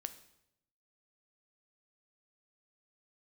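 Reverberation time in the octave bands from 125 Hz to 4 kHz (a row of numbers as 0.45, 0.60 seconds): 1.1, 0.95, 0.85, 0.75, 0.70, 0.70 seconds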